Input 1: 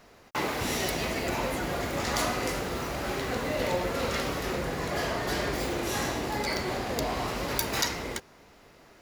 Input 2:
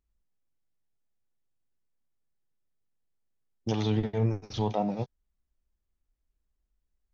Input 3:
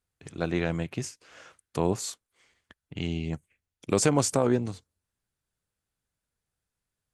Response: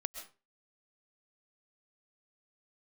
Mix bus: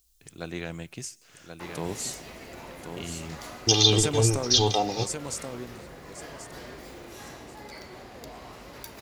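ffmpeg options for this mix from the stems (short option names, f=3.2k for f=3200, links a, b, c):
-filter_complex "[0:a]adelay=1250,volume=-16.5dB,asplit=2[a][b];[b]volume=-6dB[c];[1:a]aexciter=amount=7.6:drive=7.2:freq=3k,aecho=1:1:2.5:0.73,volume=2.5dB[d];[2:a]highshelf=f=3.1k:g=11.5,volume=-9dB,asplit=3[e][f][g];[f]volume=-17.5dB[h];[g]volume=-6dB[i];[3:a]atrim=start_sample=2205[j];[c][h]amix=inputs=2:normalize=0[k];[k][j]afir=irnorm=-1:irlink=0[l];[i]aecho=0:1:1083|2166|3249|4332:1|0.25|0.0625|0.0156[m];[a][d][e][l][m]amix=inputs=5:normalize=0"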